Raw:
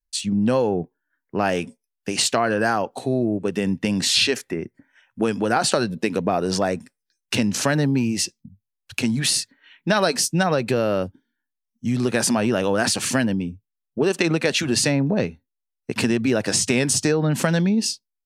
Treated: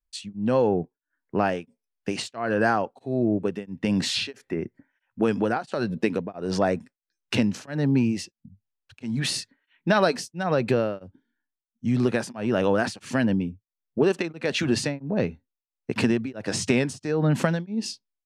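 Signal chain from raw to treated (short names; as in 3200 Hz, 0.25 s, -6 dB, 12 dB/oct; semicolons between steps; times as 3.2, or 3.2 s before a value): LPF 2500 Hz 6 dB/oct; beating tremolo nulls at 1.5 Hz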